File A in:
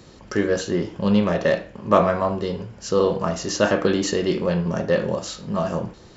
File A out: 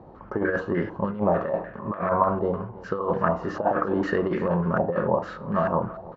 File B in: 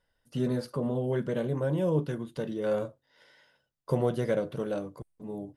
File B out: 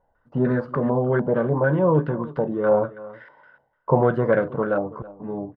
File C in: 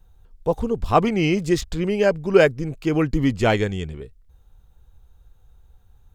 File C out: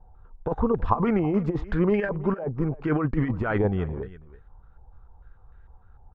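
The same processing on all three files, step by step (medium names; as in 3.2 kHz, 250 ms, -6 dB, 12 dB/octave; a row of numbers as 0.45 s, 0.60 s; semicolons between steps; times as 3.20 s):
compressor with a negative ratio -21 dBFS, ratio -0.5; delay 326 ms -18.5 dB; step-sequenced low-pass 6.7 Hz 820–1700 Hz; peak normalisation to -6 dBFS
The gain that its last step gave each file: -3.5 dB, +7.0 dB, -2.0 dB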